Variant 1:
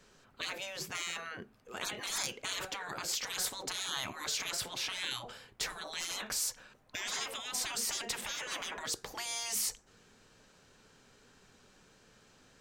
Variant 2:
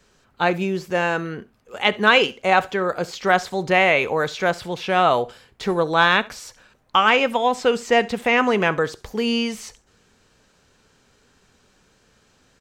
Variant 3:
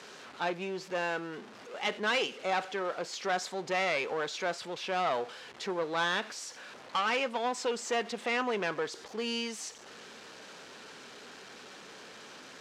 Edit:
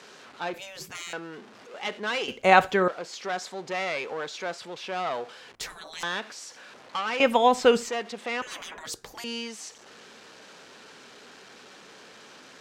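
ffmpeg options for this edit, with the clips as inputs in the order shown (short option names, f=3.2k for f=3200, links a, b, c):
-filter_complex "[0:a]asplit=3[a][b][c];[1:a]asplit=2[d][e];[2:a]asplit=6[f][g][h][i][j][k];[f]atrim=end=0.542[l];[a]atrim=start=0.538:end=1.132[m];[g]atrim=start=1.128:end=2.282[n];[d]atrim=start=2.278:end=2.882[o];[h]atrim=start=2.878:end=5.552[p];[b]atrim=start=5.548:end=6.032[q];[i]atrim=start=6.028:end=7.202[r];[e]atrim=start=7.198:end=7.892[s];[j]atrim=start=7.888:end=8.422[t];[c]atrim=start=8.418:end=9.242[u];[k]atrim=start=9.238[v];[l][m]acrossfade=d=0.004:c1=hsin:c2=hsin[w];[w][n]acrossfade=d=0.004:c1=hsin:c2=hsin[x];[x][o]acrossfade=d=0.004:c1=hsin:c2=hsin[y];[y][p]acrossfade=d=0.004:c1=hsin:c2=hsin[z];[z][q]acrossfade=d=0.004:c1=hsin:c2=hsin[aa];[aa][r]acrossfade=d=0.004:c1=hsin:c2=hsin[ab];[ab][s]acrossfade=d=0.004:c1=hsin:c2=hsin[ac];[ac][t]acrossfade=d=0.004:c1=hsin:c2=hsin[ad];[ad][u]acrossfade=d=0.004:c1=hsin:c2=hsin[ae];[ae][v]acrossfade=d=0.004:c1=hsin:c2=hsin"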